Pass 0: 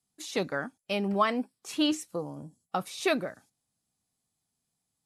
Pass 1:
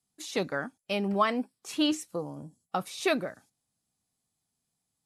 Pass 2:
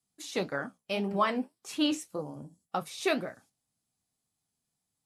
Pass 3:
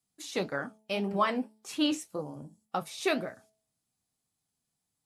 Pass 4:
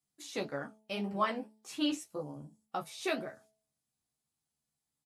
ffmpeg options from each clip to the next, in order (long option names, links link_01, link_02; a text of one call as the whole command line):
ffmpeg -i in.wav -af anull out.wav
ffmpeg -i in.wav -af "flanger=delay=7.1:depth=9.2:regen=-61:speed=1.8:shape=triangular,volume=2.5dB" out.wav
ffmpeg -i in.wav -af "bandreject=frequency=216.6:width_type=h:width=4,bandreject=frequency=433.2:width_type=h:width=4,bandreject=frequency=649.8:width_type=h:width=4,bandreject=frequency=866.4:width_type=h:width=4" out.wav
ffmpeg -i in.wav -filter_complex "[0:a]asplit=2[link_01][link_02];[link_02]adelay=14,volume=-4dB[link_03];[link_01][link_03]amix=inputs=2:normalize=0,volume=-6dB" out.wav